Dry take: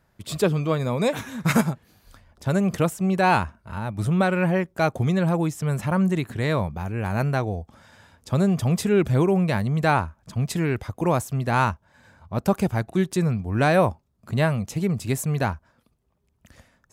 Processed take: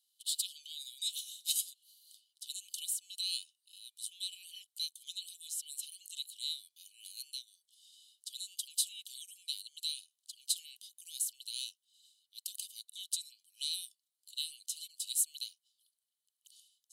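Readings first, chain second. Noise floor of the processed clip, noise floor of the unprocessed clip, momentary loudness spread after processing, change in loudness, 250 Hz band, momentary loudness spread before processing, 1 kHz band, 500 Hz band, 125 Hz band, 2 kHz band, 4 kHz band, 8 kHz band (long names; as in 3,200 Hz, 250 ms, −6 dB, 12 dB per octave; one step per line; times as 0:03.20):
below −85 dBFS, −68 dBFS, 15 LU, −15.0 dB, below −40 dB, 9 LU, below −40 dB, below −40 dB, below −40 dB, −32.0 dB, +1.5 dB, +1.5 dB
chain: Chebyshev high-pass with heavy ripple 2,900 Hz, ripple 9 dB
level +5 dB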